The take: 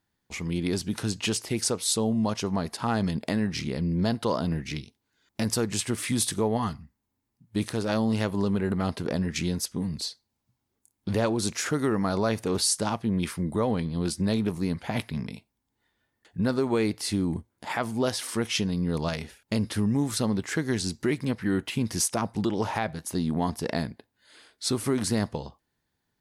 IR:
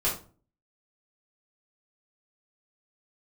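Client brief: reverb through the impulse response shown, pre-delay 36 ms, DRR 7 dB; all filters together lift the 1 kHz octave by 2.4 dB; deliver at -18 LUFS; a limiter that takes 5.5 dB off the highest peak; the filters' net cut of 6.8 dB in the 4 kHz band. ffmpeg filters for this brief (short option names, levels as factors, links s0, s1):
-filter_complex "[0:a]equalizer=f=1000:t=o:g=3.5,equalizer=f=4000:t=o:g=-9,alimiter=limit=0.133:level=0:latency=1,asplit=2[s0][s1];[1:a]atrim=start_sample=2205,adelay=36[s2];[s1][s2]afir=irnorm=-1:irlink=0,volume=0.15[s3];[s0][s3]amix=inputs=2:normalize=0,volume=3.35"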